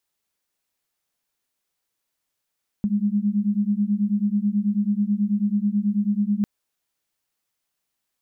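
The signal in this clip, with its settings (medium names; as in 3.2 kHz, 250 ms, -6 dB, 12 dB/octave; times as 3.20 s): beating tones 201 Hz, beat 9.2 Hz, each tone -22 dBFS 3.60 s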